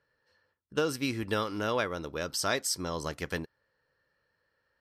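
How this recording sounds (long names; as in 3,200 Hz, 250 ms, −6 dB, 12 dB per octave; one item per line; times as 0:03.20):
background noise floor −78 dBFS
spectral slope −3.5 dB per octave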